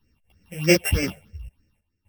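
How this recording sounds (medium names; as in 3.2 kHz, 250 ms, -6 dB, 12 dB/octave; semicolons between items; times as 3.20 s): a buzz of ramps at a fixed pitch in blocks of 16 samples; phasing stages 6, 3.2 Hz, lowest notch 280–1000 Hz; random-step tremolo 3.9 Hz, depth 80%; a shimmering, thickened sound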